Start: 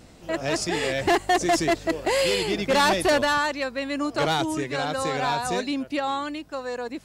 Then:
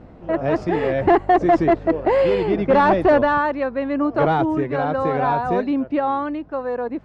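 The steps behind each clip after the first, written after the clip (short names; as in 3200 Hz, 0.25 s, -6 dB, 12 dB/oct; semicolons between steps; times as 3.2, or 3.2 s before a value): LPF 1200 Hz 12 dB/oct; gain +7 dB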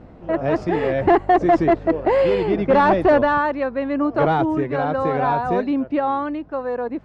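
nothing audible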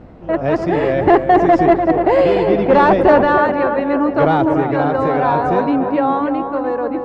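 tape echo 0.295 s, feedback 71%, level -5 dB, low-pass 1500 Hz; gain +3.5 dB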